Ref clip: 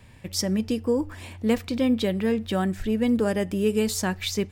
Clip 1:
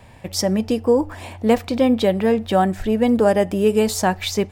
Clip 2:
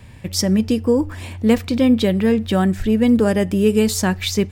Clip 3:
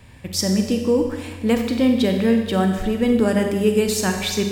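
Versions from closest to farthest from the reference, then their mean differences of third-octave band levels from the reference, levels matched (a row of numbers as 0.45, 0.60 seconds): 2, 1, 3; 1.5, 2.5, 4.5 decibels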